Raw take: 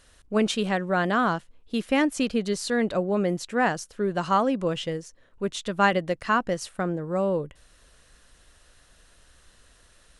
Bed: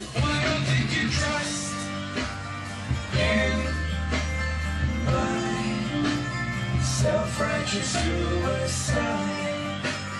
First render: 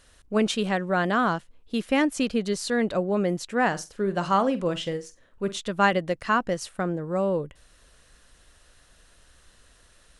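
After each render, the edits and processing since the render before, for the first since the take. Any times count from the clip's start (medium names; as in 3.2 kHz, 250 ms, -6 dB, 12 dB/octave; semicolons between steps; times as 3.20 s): 3.67–5.60 s: flutter echo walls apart 7.9 m, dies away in 0.22 s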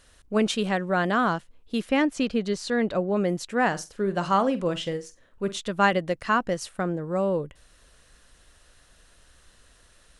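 1.89–3.16 s: distance through air 57 m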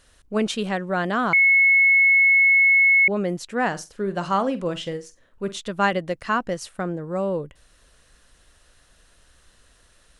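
1.33–3.08 s: bleep 2.19 kHz -12.5 dBFS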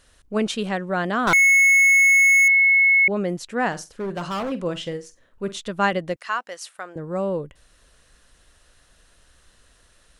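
1.27–2.48 s: overdrive pedal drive 27 dB, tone 6.6 kHz, clips at -12 dBFS; 3.72–4.52 s: overload inside the chain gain 24 dB; 6.16–6.96 s: Bessel high-pass 1 kHz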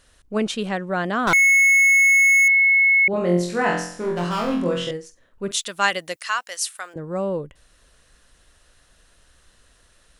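3.11–4.91 s: flutter echo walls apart 3.9 m, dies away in 0.59 s; 5.51–6.94 s: tilt EQ +4.5 dB/octave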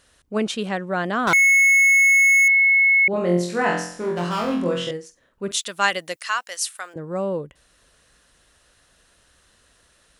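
high-pass 84 Hz 6 dB/octave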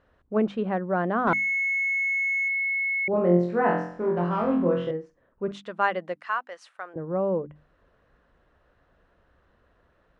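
low-pass 1.2 kHz 12 dB/octave; hum notches 50/100/150/200/250/300 Hz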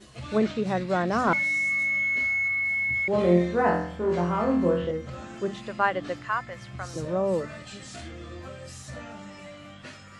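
add bed -15 dB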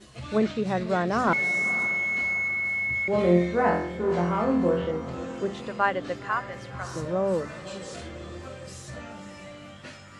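echo that smears into a reverb 538 ms, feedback 50%, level -14 dB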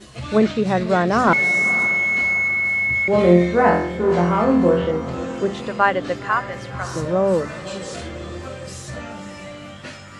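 trim +7.5 dB; peak limiter -3 dBFS, peak gain reduction 1 dB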